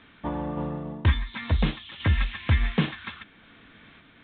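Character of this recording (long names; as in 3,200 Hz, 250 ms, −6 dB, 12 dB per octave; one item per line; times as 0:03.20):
sample-and-hold tremolo
A-law companding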